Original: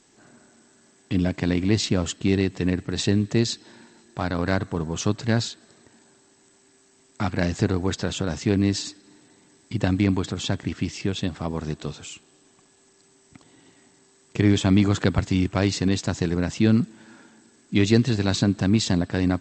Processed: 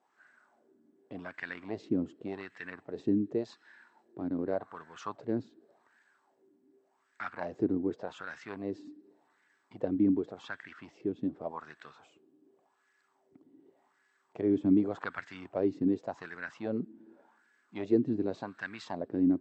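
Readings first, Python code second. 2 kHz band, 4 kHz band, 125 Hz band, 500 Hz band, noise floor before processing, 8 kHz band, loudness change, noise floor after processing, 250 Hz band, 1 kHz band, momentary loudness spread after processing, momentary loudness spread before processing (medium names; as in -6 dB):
-11.0 dB, under -20 dB, -20.5 dB, -7.5 dB, -59 dBFS, under -30 dB, -10.0 dB, -74 dBFS, -9.0 dB, -9.0 dB, 16 LU, 10 LU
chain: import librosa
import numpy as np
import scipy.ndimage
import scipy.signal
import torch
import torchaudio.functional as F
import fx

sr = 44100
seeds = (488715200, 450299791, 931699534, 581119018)

y = fx.filter_lfo_bandpass(x, sr, shape='sine', hz=0.87, low_hz=280.0, high_hz=1700.0, q=3.9)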